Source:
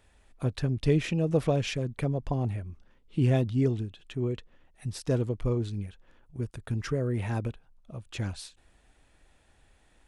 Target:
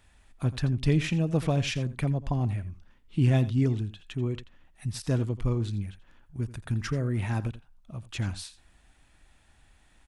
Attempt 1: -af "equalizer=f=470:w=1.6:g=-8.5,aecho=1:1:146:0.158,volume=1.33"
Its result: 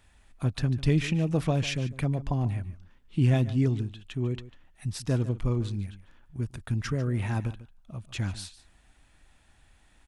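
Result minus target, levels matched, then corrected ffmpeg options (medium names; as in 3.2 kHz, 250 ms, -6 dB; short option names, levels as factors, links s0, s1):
echo 61 ms late
-af "equalizer=f=470:w=1.6:g=-8.5,aecho=1:1:85:0.158,volume=1.33"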